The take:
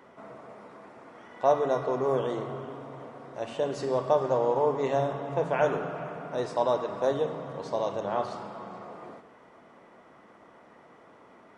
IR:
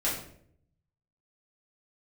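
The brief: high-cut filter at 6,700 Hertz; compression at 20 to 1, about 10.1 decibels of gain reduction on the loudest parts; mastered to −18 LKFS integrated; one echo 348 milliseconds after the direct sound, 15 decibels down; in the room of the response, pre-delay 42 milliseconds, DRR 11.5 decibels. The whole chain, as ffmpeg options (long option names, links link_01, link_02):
-filter_complex "[0:a]lowpass=6700,acompressor=threshold=-27dB:ratio=20,aecho=1:1:348:0.178,asplit=2[link_01][link_02];[1:a]atrim=start_sample=2205,adelay=42[link_03];[link_02][link_03]afir=irnorm=-1:irlink=0,volume=-20dB[link_04];[link_01][link_04]amix=inputs=2:normalize=0,volume=16dB"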